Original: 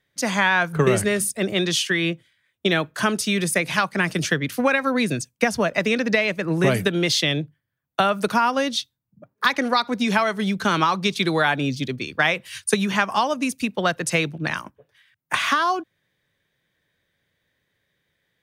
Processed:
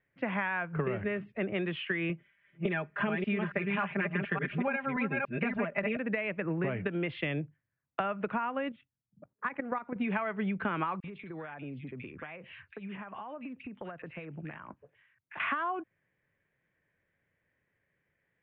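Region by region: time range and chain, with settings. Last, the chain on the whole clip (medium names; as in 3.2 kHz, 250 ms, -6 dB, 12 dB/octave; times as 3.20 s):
2.09–5.97 s: chunks repeated in reverse 287 ms, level -3 dB + comb 5 ms, depth 97%
8.69–9.96 s: distance through air 450 m + level held to a coarse grid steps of 11 dB
11.00–15.40 s: compression 16:1, threshold -32 dBFS + bands offset in time highs, lows 40 ms, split 1.8 kHz
whole clip: steep low-pass 2.7 kHz 48 dB/octave; compression, threshold -24 dBFS; trim -5 dB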